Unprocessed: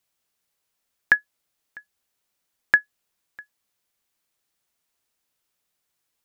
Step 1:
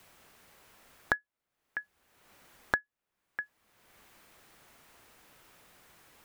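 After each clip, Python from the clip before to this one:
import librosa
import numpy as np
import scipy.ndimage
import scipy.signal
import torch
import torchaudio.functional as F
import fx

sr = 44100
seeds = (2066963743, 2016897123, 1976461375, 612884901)

y = fx.band_squash(x, sr, depth_pct=100)
y = F.gain(torch.from_numpy(y), -5.0).numpy()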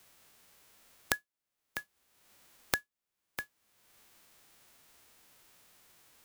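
y = fx.envelope_flatten(x, sr, power=0.3)
y = F.gain(torch.from_numpy(y), -2.5).numpy()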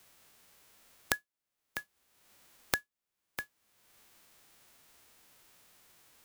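y = x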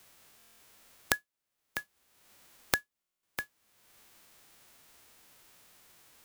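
y = fx.buffer_glitch(x, sr, at_s=(0.37, 3.0), block=1024, repeats=9)
y = F.gain(torch.from_numpy(y), 2.5).numpy()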